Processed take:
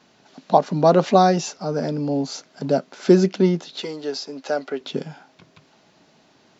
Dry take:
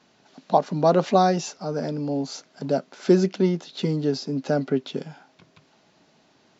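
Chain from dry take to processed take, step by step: 3.80–4.81 s: high-pass 550 Hz 12 dB/octave; trim +3.5 dB

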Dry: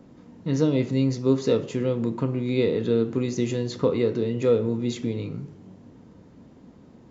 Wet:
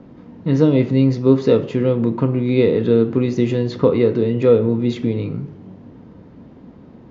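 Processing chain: distance through air 200 m; trim +8 dB

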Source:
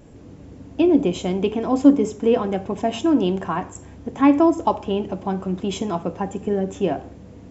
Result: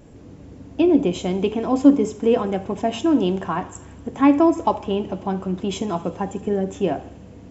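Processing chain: thinning echo 79 ms, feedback 83%, high-pass 720 Hz, level -21.5 dB

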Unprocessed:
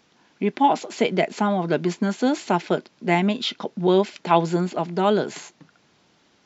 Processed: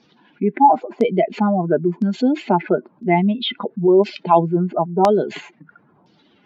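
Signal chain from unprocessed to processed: spectral contrast enhancement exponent 2; LFO low-pass saw down 0.99 Hz 890–5200 Hz; trim +4 dB

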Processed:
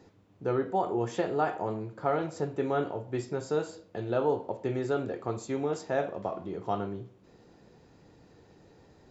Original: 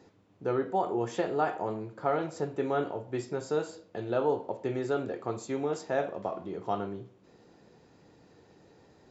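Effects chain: bass shelf 87 Hz +10 dB

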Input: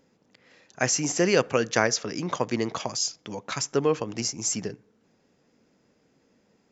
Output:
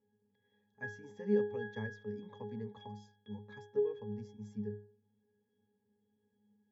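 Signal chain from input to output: pitch-class resonator G#, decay 0.45 s; trim +2.5 dB

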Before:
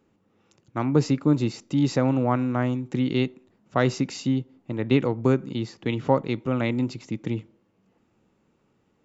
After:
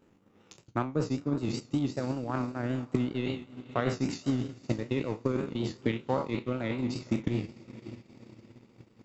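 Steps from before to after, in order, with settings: spectral sustain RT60 0.56 s; reverse; compression 10:1, threshold -30 dBFS, peak gain reduction 17.5 dB; reverse; vibrato 5.2 Hz 76 cents; echo that smears into a reverb 523 ms, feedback 46%, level -13 dB; transient shaper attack +11 dB, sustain -10 dB

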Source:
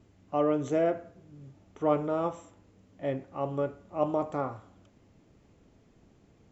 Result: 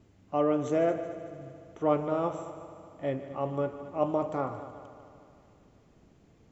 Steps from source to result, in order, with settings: multi-head delay 75 ms, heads second and third, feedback 60%, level -14.5 dB

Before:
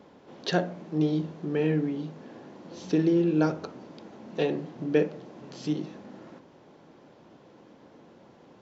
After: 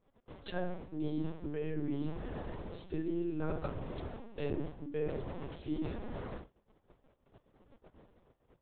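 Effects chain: gate -50 dBFS, range -30 dB; reverse; compression 10:1, threshold -38 dBFS, peak gain reduction 21 dB; reverse; LPC vocoder at 8 kHz pitch kept; trim +5 dB

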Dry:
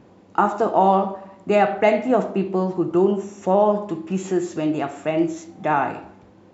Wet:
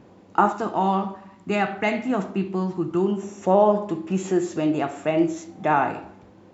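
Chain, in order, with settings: 0.52–3.23 s: peaking EQ 560 Hz -11.5 dB 1.1 oct

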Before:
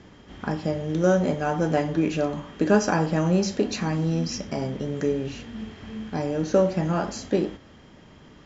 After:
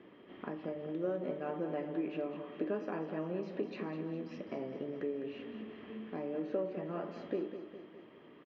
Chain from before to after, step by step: compression 2.5:1, threshold -32 dBFS, peak gain reduction 12.5 dB; cabinet simulation 290–2700 Hz, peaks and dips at 350 Hz +4 dB, 830 Hz -8 dB, 1.5 kHz -8 dB, 2.2 kHz -3 dB; feedback delay 205 ms, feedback 54%, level -10 dB; trim -4 dB

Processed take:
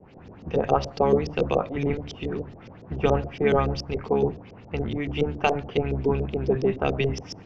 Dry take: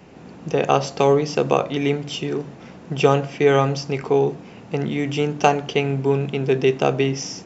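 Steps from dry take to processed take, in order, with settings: octave divider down 1 oct, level 0 dB; LFO low-pass saw up 7.1 Hz 390–5800 Hz; trim -7.5 dB

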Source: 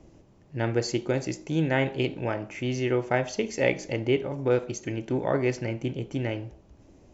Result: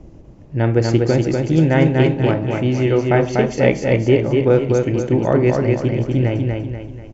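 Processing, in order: tilt EQ -2 dB/octave; on a send: feedback delay 243 ms, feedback 42%, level -3.5 dB; on the sum: trim +6.5 dB

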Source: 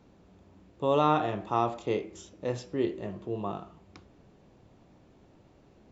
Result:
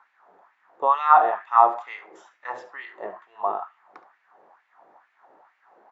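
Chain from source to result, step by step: treble shelf 3 kHz -11.5 dB; delay 71 ms -14.5 dB; LFO high-pass sine 2.2 Hz 440–2300 Hz; high-order bell 1.2 kHz +13 dB; trim -2 dB

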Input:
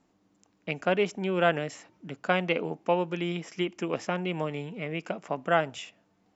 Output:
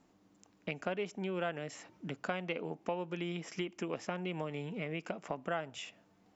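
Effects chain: compression 3:1, threshold -38 dBFS, peak gain reduction 15 dB; trim +1 dB

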